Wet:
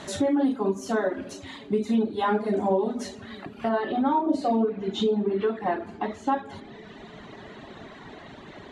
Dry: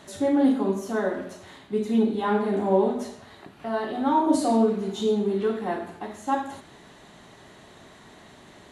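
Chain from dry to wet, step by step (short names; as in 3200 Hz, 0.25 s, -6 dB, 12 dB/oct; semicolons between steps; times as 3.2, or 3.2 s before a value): LPF 8300 Hz 12 dB/oct, from 3.69 s 3600 Hz; reverb removal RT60 1.3 s; compressor 3:1, threshold -32 dBFS, peak gain reduction 12.5 dB; dark delay 0.337 s, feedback 84%, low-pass 430 Hz, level -21 dB; gain +8.5 dB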